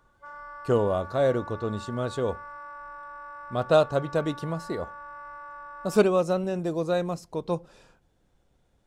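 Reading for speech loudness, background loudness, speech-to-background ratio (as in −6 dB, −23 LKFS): −27.0 LKFS, −42.0 LKFS, 15.0 dB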